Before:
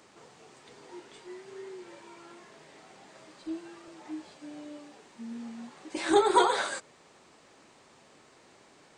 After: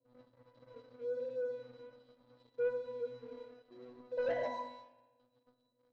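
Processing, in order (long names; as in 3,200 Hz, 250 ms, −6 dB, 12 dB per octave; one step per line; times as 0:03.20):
gliding playback speed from 121% → 182%
inverse Chebyshev band-stop filter 1,200–2,700 Hz, stop band 40 dB
leveller curve on the samples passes 1
dynamic equaliser 960 Hz, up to +8 dB, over −48 dBFS, Q 2.1
resonances in every octave B, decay 0.65 s
leveller curve on the samples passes 2
high-frequency loss of the air 120 metres
spring reverb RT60 1.2 s, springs 35 ms, chirp 65 ms, DRR 9.5 dB
level +11 dB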